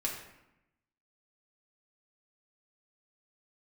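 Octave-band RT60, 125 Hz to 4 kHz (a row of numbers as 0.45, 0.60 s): 1.1, 1.1, 0.85, 0.90, 0.85, 0.60 s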